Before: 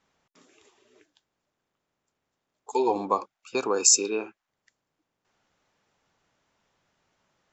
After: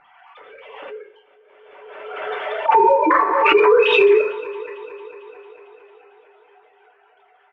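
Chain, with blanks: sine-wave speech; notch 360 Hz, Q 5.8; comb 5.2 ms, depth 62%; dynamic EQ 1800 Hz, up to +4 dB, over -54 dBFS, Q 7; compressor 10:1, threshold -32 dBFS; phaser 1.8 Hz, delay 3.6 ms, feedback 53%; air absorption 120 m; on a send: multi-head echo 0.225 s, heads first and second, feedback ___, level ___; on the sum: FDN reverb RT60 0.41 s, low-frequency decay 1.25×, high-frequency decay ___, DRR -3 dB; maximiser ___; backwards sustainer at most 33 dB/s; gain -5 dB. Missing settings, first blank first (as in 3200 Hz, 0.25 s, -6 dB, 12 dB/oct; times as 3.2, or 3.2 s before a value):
60%, -22.5 dB, 0.7×, +24.5 dB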